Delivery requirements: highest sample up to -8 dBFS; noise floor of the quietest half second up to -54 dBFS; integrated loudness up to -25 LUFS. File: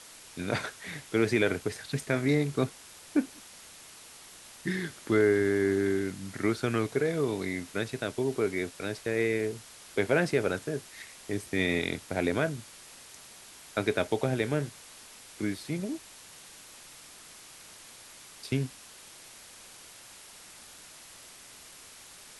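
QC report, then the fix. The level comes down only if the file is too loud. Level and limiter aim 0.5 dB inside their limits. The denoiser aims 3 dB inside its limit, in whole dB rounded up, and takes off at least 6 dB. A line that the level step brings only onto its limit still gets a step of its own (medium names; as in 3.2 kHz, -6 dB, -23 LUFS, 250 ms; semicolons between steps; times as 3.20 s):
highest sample -12.0 dBFS: pass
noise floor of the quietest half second -50 dBFS: fail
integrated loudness -30.5 LUFS: pass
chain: noise reduction 7 dB, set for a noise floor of -50 dBFS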